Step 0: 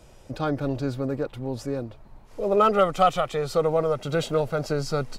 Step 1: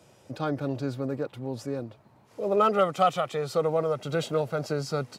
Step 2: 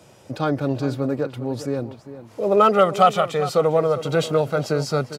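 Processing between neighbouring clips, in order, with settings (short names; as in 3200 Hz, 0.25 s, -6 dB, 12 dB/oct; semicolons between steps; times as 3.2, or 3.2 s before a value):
HPF 100 Hz 24 dB/oct; gain -3 dB
outdoor echo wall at 69 m, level -13 dB; gain +7 dB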